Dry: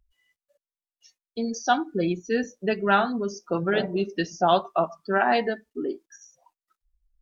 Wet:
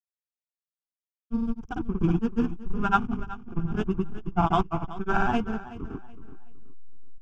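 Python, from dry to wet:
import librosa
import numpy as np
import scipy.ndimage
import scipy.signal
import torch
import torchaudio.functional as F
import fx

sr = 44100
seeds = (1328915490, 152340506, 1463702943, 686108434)

p1 = fx.hum_notches(x, sr, base_hz=50, count=10)
p2 = fx.backlash(p1, sr, play_db=-22.5)
p3 = fx.peak_eq(p2, sr, hz=1600.0, db=3.0, octaves=0.47)
p4 = fx.granulator(p3, sr, seeds[0], grain_ms=100.0, per_s=20.0, spray_ms=100.0, spread_st=0)
p5 = fx.tilt_eq(p4, sr, slope=-3.0)
p6 = fx.fixed_phaser(p5, sr, hz=2800.0, stages=8)
p7 = p6 + fx.echo_feedback(p6, sr, ms=375, feedback_pct=29, wet_db=-12.0, dry=0)
p8 = fx.upward_expand(p7, sr, threshold_db=-34.0, expansion=1.5)
y = p8 * librosa.db_to_amplitude(4.0)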